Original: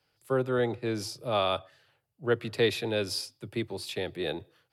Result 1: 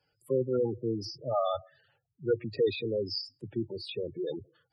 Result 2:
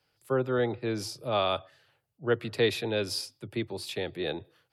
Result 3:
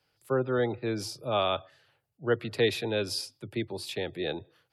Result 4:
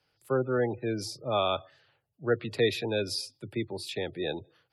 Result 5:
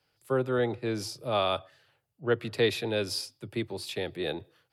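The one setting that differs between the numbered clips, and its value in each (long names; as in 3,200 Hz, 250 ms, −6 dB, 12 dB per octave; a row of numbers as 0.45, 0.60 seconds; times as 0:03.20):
gate on every frequency bin, under each frame's peak: −10, −45, −35, −25, −60 decibels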